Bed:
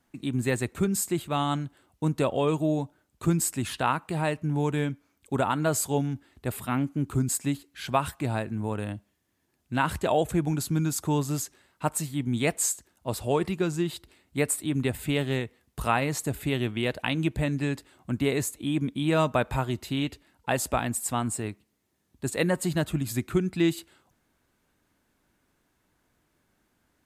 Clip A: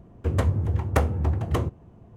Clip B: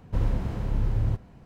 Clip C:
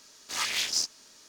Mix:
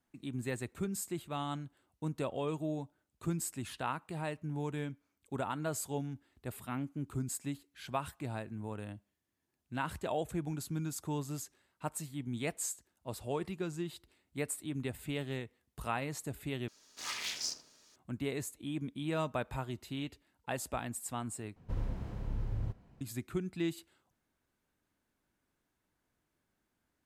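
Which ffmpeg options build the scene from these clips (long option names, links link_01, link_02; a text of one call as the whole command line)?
ffmpeg -i bed.wav -i cue0.wav -i cue1.wav -i cue2.wav -filter_complex "[0:a]volume=-11dB[link_01];[3:a]asplit=2[link_02][link_03];[link_03]adelay=79,lowpass=frequency=1200:poles=1,volume=-4.5dB,asplit=2[link_04][link_05];[link_05]adelay=79,lowpass=frequency=1200:poles=1,volume=0.47,asplit=2[link_06][link_07];[link_07]adelay=79,lowpass=frequency=1200:poles=1,volume=0.47,asplit=2[link_08][link_09];[link_09]adelay=79,lowpass=frequency=1200:poles=1,volume=0.47,asplit=2[link_10][link_11];[link_11]adelay=79,lowpass=frequency=1200:poles=1,volume=0.47,asplit=2[link_12][link_13];[link_13]adelay=79,lowpass=frequency=1200:poles=1,volume=0.47[link_14];[link_02][link_04][link_06][link_08][link_10][link_12][link_14]amix=inputs=7:normalize=0[link_15];[link_01]asplit=3[link_16][link_17][link_18];[link_16]atrim=end=16.684[link_19];[link_15]atrim=end=1.28,asetpts=PTS-STARTPTS,volume=-9.5dB[link_20];[link_17]atrim=start=17.956:end=21.564[link_21];[2:a]atrim=end=1.45,asetpts=PTS-STARTPTS,volume=-11dB[link_22];[link_18]atrim=start=23.006[link_23];[link_19][link_20]acrossfade=duration=0.004:curve1=hsin:curve2=hsin[link_24];[link_24][link_21]acrossfade=duration=0.004:curve1=hsin:curve2=hsin[link_25];[link_25][link_22]acrossfade=duration=0.004:curve1=hsin:curve2=hsin[link_26];[link_26][link_23]acrossfade=duration=0.004:curve1=hsin:curve2=hsin" out.wav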